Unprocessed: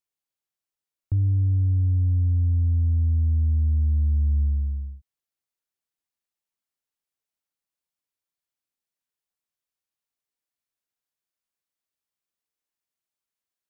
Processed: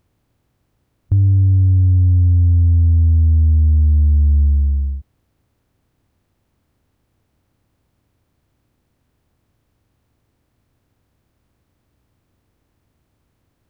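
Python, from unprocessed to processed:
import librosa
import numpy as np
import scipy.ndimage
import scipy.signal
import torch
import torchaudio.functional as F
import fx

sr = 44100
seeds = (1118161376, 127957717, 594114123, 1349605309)

y = fx.bin_compress(x, sr, power=0.6)
y = y * librosa.db_to_amplitude(8.0)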